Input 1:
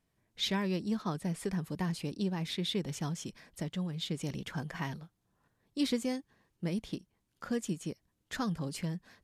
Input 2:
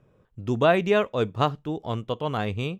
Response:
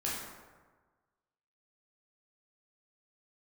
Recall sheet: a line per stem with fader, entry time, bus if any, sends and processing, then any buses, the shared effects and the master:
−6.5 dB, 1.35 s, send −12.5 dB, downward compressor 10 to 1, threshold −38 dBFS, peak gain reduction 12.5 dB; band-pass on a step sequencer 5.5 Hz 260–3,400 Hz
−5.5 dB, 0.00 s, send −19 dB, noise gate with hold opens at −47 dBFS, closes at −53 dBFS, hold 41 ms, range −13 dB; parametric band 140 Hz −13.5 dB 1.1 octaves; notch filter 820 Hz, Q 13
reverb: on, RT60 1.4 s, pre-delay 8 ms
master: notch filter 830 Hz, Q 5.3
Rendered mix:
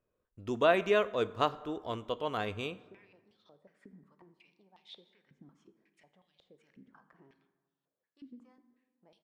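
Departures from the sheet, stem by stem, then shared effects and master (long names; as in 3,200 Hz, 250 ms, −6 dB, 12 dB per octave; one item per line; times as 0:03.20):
stem 1: entry 1.35 s → 2.40 s
master: missing notch filter 830 Hz, Q 5.3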